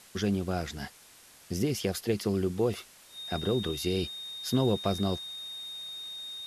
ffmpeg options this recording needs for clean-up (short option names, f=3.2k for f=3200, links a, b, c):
-af "adeclick=t=4,bandreject=f=3.7k:w=30,afwtdn=0.0022"